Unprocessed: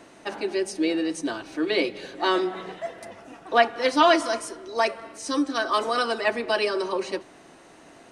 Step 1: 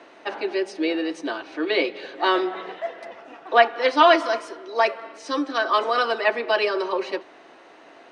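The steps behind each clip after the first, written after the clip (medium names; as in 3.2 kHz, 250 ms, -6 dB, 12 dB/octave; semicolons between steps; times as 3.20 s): three-band isolator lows -19 dB, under 300 Hz, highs -23 dB, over 4.7 kHz; trim +3.5 dB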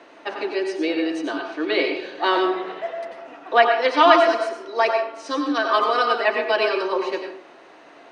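reverberation RT60 0.45 s, pre-delay 86 ms, DRR 4 dB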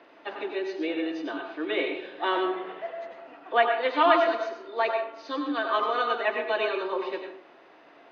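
knee-point frequency compression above 3 kHz 1.5:1; trim -6.5 dB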